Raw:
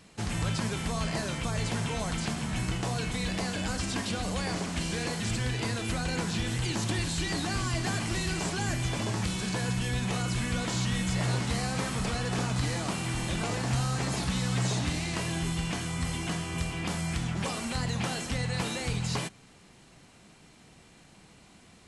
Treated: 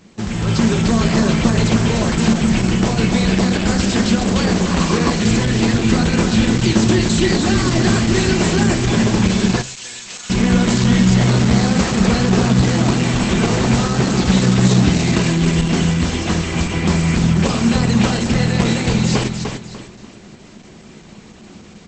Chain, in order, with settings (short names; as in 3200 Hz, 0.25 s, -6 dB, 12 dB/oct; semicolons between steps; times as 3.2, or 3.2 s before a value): feedback echo 0.297 s, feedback 31%, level -6 dB; reverb RT60 0.35 s, pre-delay 91 ms, DRR 25.5 dB; AGC gain up to 6.5 dB; 9.62–10.3 differentiator; vibrato 2.8 Hz 7.9 cents; small resonant body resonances 220/370 Hz, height 9 dB, ringing for 45 ms; 4.71–5.11 bell 1100 Hz +13.5 dB 0.39 oct; de-hum 131.1 Hz, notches 9; gain +6 dB; Opus 12 kbps 48000 Hz